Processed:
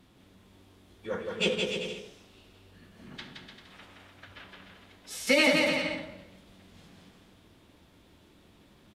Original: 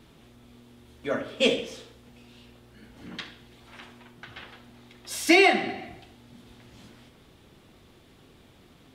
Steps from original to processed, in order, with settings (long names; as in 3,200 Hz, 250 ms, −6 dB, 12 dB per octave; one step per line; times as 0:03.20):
phase-vocoder pitch shift with formants kept −4 semitones
bouncing-ball delay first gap 170 ms, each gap 0.75×, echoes 5
level −5 dB